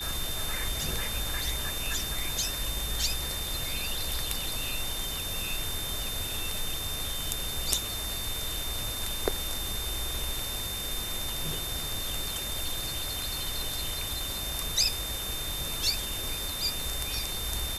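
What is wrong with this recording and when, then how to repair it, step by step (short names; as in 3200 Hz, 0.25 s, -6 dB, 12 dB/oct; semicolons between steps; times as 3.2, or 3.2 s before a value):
tone 3600 Hz -36 dBFS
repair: notch 3600 Hz, Q 30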